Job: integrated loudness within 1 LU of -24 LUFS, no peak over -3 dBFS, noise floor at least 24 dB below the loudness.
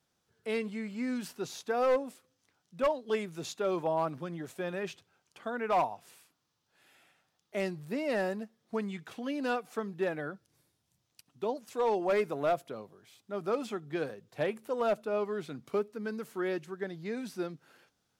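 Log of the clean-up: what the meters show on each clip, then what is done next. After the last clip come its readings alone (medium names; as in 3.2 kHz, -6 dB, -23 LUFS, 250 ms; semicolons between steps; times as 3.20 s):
clipped samples 0.5%; clipping level -22.0 dBFS; loudness -34.0 LUFS; peak level -22.0 dBFS; loudness target -24.0 LUFS
-> clip repair -22 dBFS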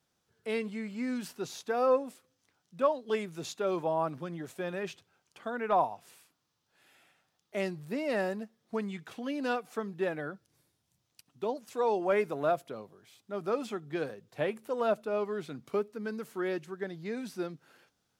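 clipped samples 0.0%; loudness -33.5 LUFS; peak level -15.0 dBFS; loudness target -24.0 LUFS
-> trim +9.5 dB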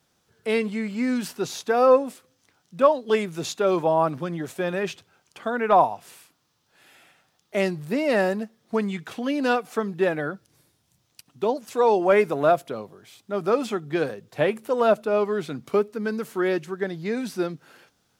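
loudness -24.0 LUFS; peak level -5.5 dBFS; noise floor -69 dBFS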